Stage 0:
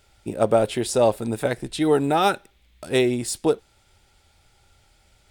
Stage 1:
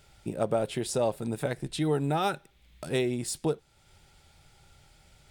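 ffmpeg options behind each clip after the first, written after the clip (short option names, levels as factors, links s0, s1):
-af "equalizer=f=150:t=o:w=0.33:g=11,acompressor=threshold=0.01:ratio=1.5"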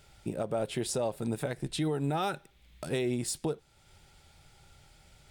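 -af "alimiter=limit=0.0794:level=0:latency=1:release=117"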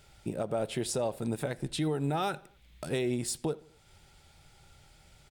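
-filter_complex "[0:a]asplit=2[s0][s1];[s1]adelay=84,lowpass=f=2800:p=1,volume=0.0794,asplit=2[s2][s3];[s3]adelay=84,lowpass=f=2800:p=1,volume=0.49,asplit=2[s4][s5];[s5]adelay=84,lowpass=f=2800:p=1,volume=0.49[s6];[s0][s2][s4][s6]amix=inputs=4:normalize=0"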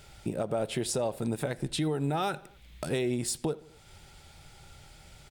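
-af "acompressor=threshold=0.00891:ratio=1.5,volume=2"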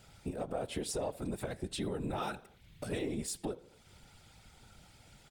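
-af "asoftclip=type=tanh:threshold=0.112,afftfilt=real='hypot(re,im)*cos(2*PI*random(0))':imag='hypot(re,im)*sin(2*PI*random(1))':win_size=512:overlap=0.75"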